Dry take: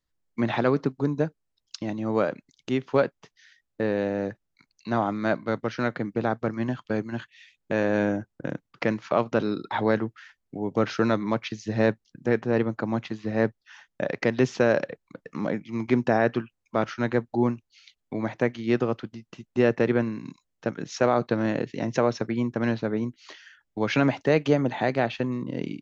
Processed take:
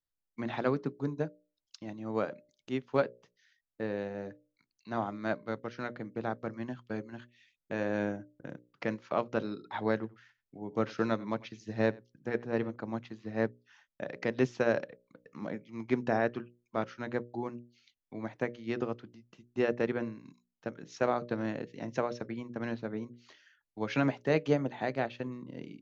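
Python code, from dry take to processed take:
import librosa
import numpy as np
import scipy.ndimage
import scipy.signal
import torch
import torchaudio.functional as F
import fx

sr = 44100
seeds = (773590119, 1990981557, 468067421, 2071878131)

y = fx.echo_single(x, sr, ms=92, db=-18.0, at=(9.94, 12.76))
y = fx.hum_notches(y, sr, base_hz=60, count=10)
y = fx.upward_expand(y, sr, threshold_db=-33.0, expansion=1.5)
y = y * librosa.db_to_amplitude(-5.0)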